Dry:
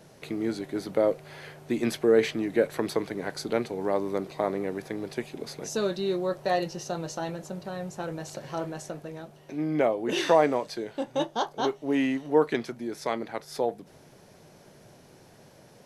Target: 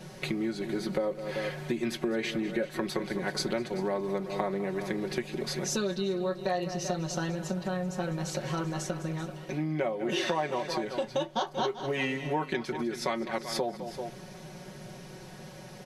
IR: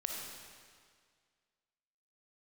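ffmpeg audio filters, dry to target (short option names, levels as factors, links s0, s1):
-filter_complex "[0:a]lowshelf=f=230:g=9.5,aecho=1:1:5.4:0.84,asplit=2[s0][s1];[s1]aecho=0:1:203|386:0.168|0.168[s2];[s0][s2]amix=inputs=2:normalize=0,acompressor=threshold=0.0316:ratio=5,equalizer=f=2700:w=0.33:g=6.5"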